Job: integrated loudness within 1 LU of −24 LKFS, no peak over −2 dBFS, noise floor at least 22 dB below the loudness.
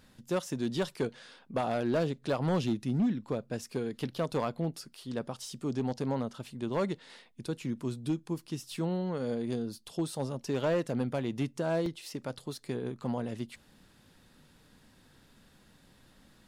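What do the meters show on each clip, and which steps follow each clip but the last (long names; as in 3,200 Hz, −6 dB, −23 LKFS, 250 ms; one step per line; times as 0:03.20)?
share of clipped samples 0.8%; peaks flattened at −23.0 dBFS; number of dropouts 1; longest dropout 2.4 ms; integrated loudness −34.0 LKFS; sample peak −23.0 dBFS; target loudness −24.0 LKFS
→ clipped peaks rebuilt −23 dBFS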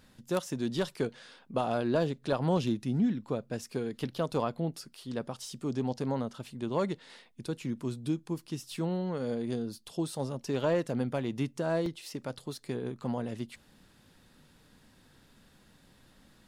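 share of clipped samples 0.0%; number of dropouts 1; longest dropout 2.4 ms
→ repair the gap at 0:11.86, 2.4 ms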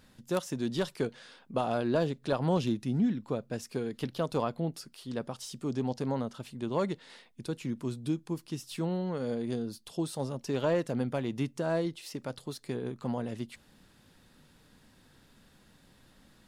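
number of dropouts 0; integrated loudness −33.5 LKFS; sample peak −14.0 dBFS; target loudness −24.0 LKFS
→ level +9.5 dB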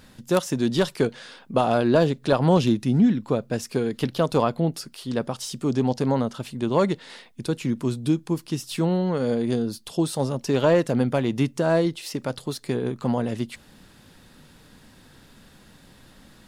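integrated loudness −24.0 LKFS; sample peak −4.5 dBFS; background noise floor −53 dBFS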